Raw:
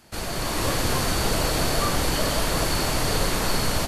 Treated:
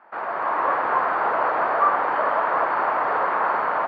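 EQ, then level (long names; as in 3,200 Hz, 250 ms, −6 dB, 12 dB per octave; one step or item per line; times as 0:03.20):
high-pass filter 740 Hz 12 dB per octave
low-pass filter 1,600 Hz 24 dB per octave
parametric band 990 Hz +6 dB 1.1 octaves
+6.5 dB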